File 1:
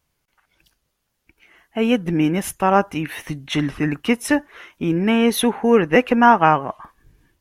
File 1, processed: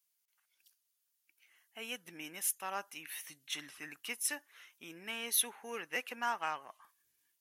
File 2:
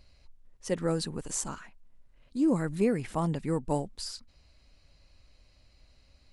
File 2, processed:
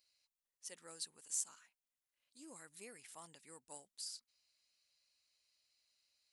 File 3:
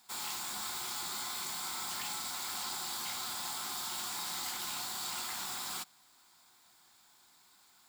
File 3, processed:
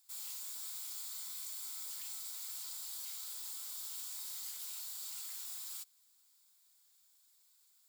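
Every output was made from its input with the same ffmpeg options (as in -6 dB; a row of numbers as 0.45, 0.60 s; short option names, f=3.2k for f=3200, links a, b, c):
-af "aeval=exprs='0.891*(cos(1*acos(clip(val(0)/0.891,-1,1)))-cos(1*PI/2))+0.00794*(cos(8*acos(clip(val(0)/0.891,-1,1)))-cos(8*PI/2))':c=same,aderivative,volume=-5.5dB"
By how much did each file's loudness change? -19.5, -16.0, -5.0 LU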